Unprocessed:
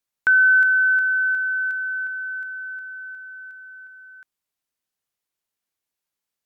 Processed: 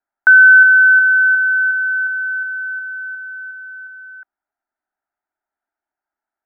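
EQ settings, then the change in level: synth low-pass 1300 Hz, resonance Q 3; bell 760 Hz +8 dB 2 oct; fixed phaser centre 740 Hz, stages 8; 0.0 dB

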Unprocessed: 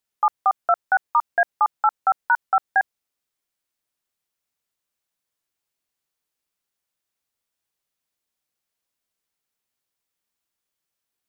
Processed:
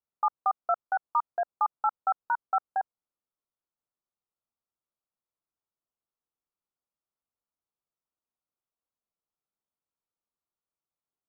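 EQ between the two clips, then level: steep low-pass 1400 Hz 72 dB/oct; -7.0 dB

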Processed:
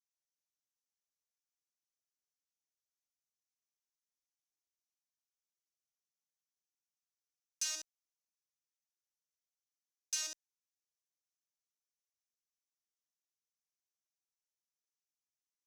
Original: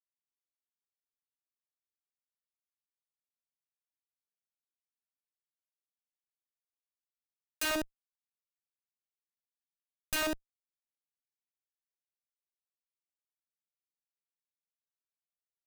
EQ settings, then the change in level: band-pass 6000 Hz, Q 4.5; +7.5 dB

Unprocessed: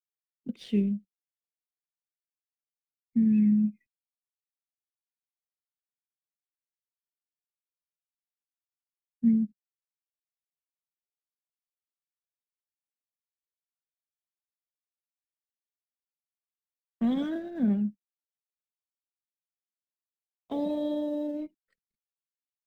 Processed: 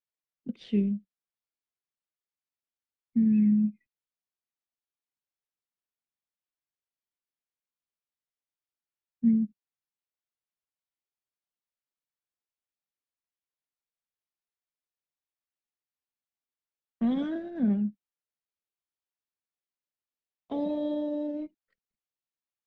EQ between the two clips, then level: air absorption 110 m; 0.0 dB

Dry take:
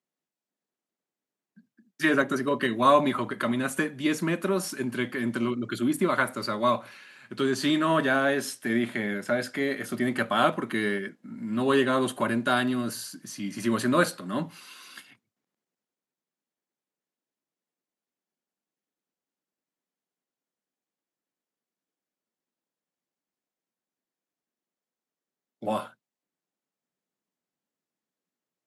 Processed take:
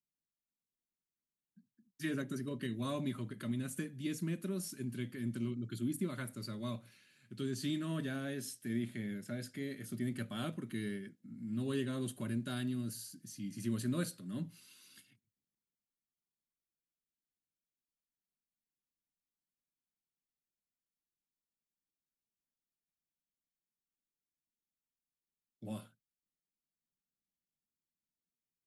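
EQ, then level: passive tone stack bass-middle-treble 10-0-1; low shelf 89 Hz +7.5 dB; high shelf 6700 Hz +7 dB; +7.0 dB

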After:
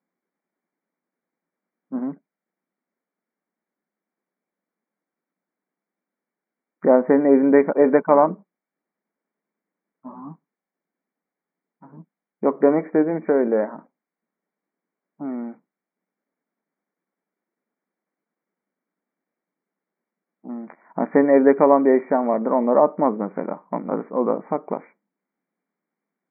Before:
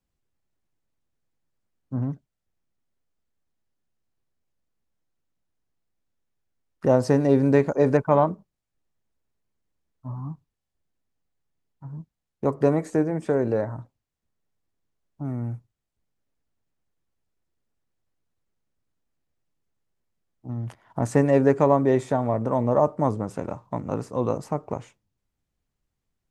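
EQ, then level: brick-wall FIR band-pass 170–2400 Hz; +4.5 dB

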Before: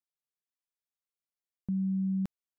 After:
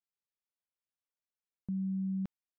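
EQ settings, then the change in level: air absorption 130 m; -4.0 dB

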